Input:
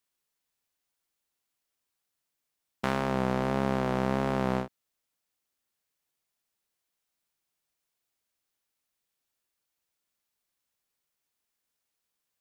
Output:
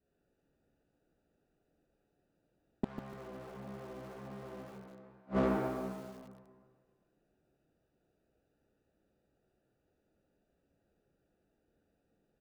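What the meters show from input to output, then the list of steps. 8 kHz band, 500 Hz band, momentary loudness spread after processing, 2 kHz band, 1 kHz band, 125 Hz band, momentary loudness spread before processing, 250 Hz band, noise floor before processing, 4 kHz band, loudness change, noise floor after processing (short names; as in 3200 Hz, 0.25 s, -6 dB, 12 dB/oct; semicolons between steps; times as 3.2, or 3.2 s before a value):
under -10 dB, -7.5 dB, 20 LU, -12.5 dB, -11.5 dB, -10.5 dB, 5 LU, -7.5 dB, -84 dBFS, -14.5 dB, -10.5 dB, -80 dBFS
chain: Wiener smoothing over 41 samples; bell 300 Hz +3 dB 1.4 oct; notch 950 Hz, Q 17; on a send: feedback echo 0.399 s, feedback 17%, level -13.5 dB; on the sum: plate-style reverb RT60 1.9 s, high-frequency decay 0.85×, DRR -7.5 dB; added harmonics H 5 -26 dB, 8 -28 dB, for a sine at -12.5 dBFS; flipped gate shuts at -26 dBFS, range -39 dB; high shelf 3400 Hz -7 dB; hard clip -35 dBFS, distortion -5 dB; lo-fi delay 0.147 s, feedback 35%, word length 10-bit, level -9 dB; gain +10.5 dB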